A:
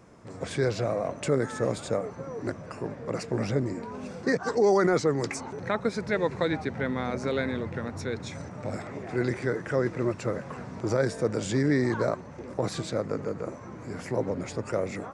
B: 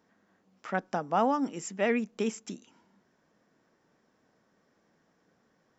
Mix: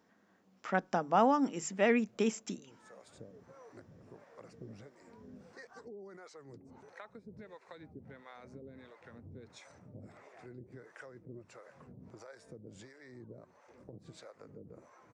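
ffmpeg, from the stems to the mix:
-filter_complex "[0:a]acompressor=threshold=-30dB:ratio=10,acrossover=split=490[a][b];[a]aeval=exprs='val(0)*(1-1/2+1/2*cos(2*PI*1.5*n/s))':c=same[c];[b]aeval=exprs='val(0)*(1-1/2-1/2*cos(2*PI*1.5*n/s))':c=same[d];[c][d]amix=inputs=2:normalize=0,adelay=1300,volume=-12dB[e];[1:a]bandreject=f=50:t=h:w=6,bandreject=f=100:t=h:w=6,bandreject=f=150:t=h:w=6,volume=-0.5dB,asplit=2[f][g];[g]apad=whole_len=724633[h];[e][h]sidechaincompress=threshold=-48dB:ratio=4:attack=5.8:release=519[i];[i][f]amix=inputs=2:normalize=0"

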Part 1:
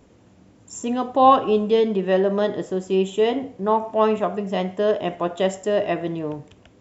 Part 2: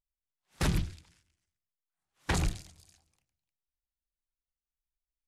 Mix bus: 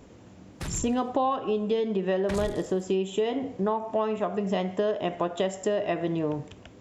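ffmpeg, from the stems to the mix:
-filter_complex "[0:a]acompressor=threshold=-26dB:ratio=10,volume=3dB[a];[1:a]agate=range=-15dB:threshold=-57dB:ratio=16:detection=peak,alimiter=limit=-23dB:level=0:latency=1:release=23,volume=-3.5dB[b];[a][b]amix=inputs=2:normalize=0"

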